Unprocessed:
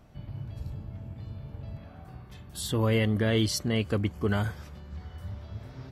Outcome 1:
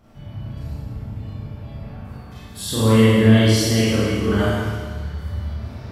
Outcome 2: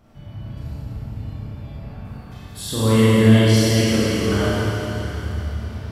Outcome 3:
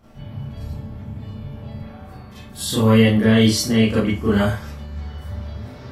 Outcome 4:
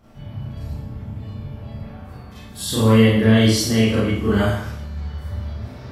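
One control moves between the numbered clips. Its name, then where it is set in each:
four-comb reverb, RT60: 1.7, 3.8, 0.31, 0.71 seconds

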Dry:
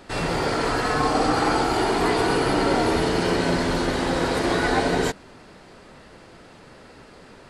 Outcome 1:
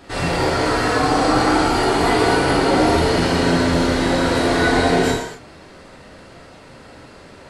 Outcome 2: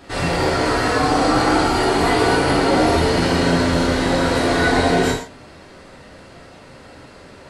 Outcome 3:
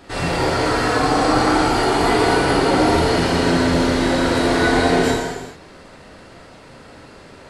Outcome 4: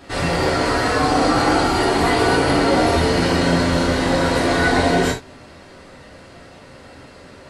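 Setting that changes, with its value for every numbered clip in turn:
reverb whose tail is shaped and stops, gate: 300, 190, 470, 110 milliseconds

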